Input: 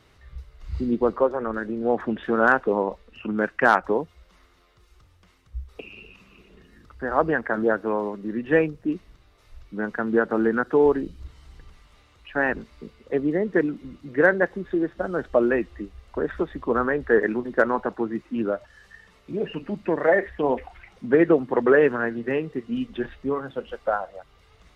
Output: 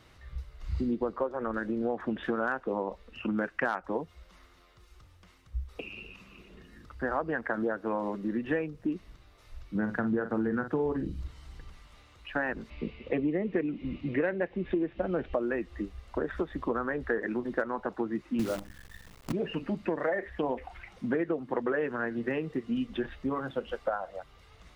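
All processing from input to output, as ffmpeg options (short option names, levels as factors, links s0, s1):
-filter_complex "[0:a]asettb=1/sr,asplit=3[s0][s1][s2];[s0]atrim=end=9.754[s3];[s1]atrim=start=9.75:end=11.21,asetpts=PTS-STARTPTS,afade=t=in:d=0.004:c=qsin,afade=t=out:st=1.456:d=0.004:c=qsin,equalizer=f=110:w=0.71:g=12.5,asplit=2[s4][s5];[s5]adelay=46,volume=0.316[s6];[s4][s6]amix=inputs=2:normalize=0,atrim=end_sample=64386[s7];[s2]atrim=start=11.206[s8];[s3][s7]acrossfade=d=0.004:c1=hsin:c2=qsin[s9];[s9][s8]acrossfade=d=0.004:c1=qsin:c2=hsin,asettb=1/sr,asplit=3[s10][s11][s12];[s10]atrim=end=12.704[s13];[s11]atrim=start=12.7:end=15.34,asetpts=PTS-STARTPTS,afade=t=in:d=0.004:c=qsin,afade=t=out:st=2.636:d=0.004:c=qsin,equalizer=f=1500:t=o:w=1.3:g=-11,acontrast=61,lowpass=f=2500:t=q:w=3.7[s14];[s12]atrim=start=15.336[s15];[s13][s14]acrossfade=d=0.004:c1=hsin:c2=qsin[s16];[s16][s15]acrossfade=d=0.004:c1=qsin:c2=hsin,asettb=1/sr,asplit=3[s17][s18][s19];[s17]atrim=end=18.394[s20];[s18]atrim=start=18.39:end=19.32,asetpts=PTS-STARTPTS,afade=t=in:d=0.004:c=qsin,afade=t=out:st=0.926:d=0.004:c=qsin,bass=f=250:g=13,treble=f=4000:g=-6,bandreject=f=50:t=h:w=6,bandreject=f=100:t=h:w=6,bandreject=f=150:t=h:w=6,bandreject=f=200:t=h:w=6,bandreject=f=250:t=h:w=6,bandreject=f=300:t=h:w=6,bandreject=f=350:t=h:w=6,acrusher=bits=6:dc=4:mix=0:aa=0.000001[s21];[s19]atrim=start=19.316[s22];[s20][s21]acrossfade=d=0.004:c1=hsin:c2=qsin[s23];[s23][s22]acrossfade=d=0.004:c1=qsin:c2=hsin,bandreject=f=420:w=12,acompressor=threshold=0.0447:ratio=6"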